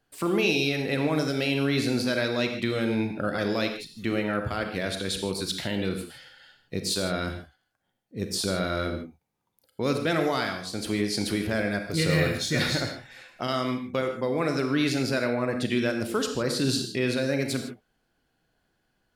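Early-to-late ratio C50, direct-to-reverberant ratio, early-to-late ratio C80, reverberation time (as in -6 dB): 7.0 dB, 5.5 dB, 8.5 dB, not exponential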